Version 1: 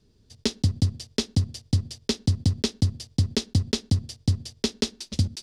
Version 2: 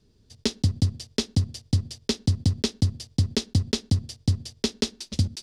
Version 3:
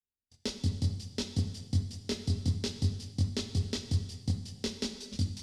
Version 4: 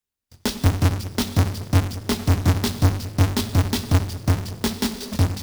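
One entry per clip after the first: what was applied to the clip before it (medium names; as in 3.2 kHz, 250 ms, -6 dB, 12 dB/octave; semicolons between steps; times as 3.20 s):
no audible change
gate -47 dBFS, range -35 dB; chorus voices 4, 0.62 Hz, delay 22 ms, depth 2.8 ms; gated-style reverb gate 480 ms falling, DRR 7.5 dB; trim -5.5 dB
square wave that keeps the level; dynamic bell 490 Hz, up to -5 dB, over -42 dBFS, Q 1.7; trim +8 dB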